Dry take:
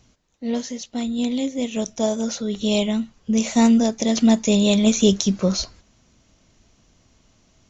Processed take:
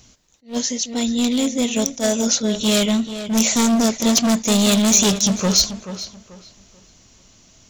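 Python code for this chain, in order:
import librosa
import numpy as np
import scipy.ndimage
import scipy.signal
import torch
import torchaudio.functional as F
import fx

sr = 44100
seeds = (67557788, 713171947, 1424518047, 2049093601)

p1 = np.clip(x, -10.0 ** (-19.0 / 20.0), 10.0 ** (-19.0 / 20.0))
p2 = fx.high_shelf(p1, sr, hz=3600.0, db=11.5)
p3 = p2 + fx.echo_tape(p2, sr, ms=436, feedback_pct=29, wet_db=-10, lp_hz=3300.0, drive_db=7.0, wow_cents=39, dry=0)
p4 = fx.attack_slew(p3, sr, db_per_s=260.0)
y = p4 * librosa.db_to_amplitude(4.0)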